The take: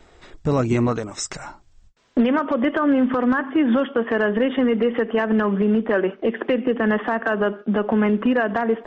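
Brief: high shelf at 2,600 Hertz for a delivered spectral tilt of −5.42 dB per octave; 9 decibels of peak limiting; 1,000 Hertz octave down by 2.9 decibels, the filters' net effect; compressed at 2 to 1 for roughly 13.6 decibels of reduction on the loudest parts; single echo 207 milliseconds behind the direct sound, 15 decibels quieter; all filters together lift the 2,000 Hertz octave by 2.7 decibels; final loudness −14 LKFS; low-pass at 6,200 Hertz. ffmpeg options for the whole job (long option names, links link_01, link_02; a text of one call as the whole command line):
ffmpeg -i in.wav -af "lowpass=6200,equalizer=frequency=1000:width_type=o:gain=-5,equalizer=frequency=2000:width_type=o:gain=8.5,highshelf=frequency=2600:gain=-8,acompressor=threshold=-41dB:ratio=2,alimiter=level_in=4.5dB:limit=-24dB:level=0:latency=1,volume=-4.5dB,aecho=1:1:207:0.178,volume=23dB" out.wav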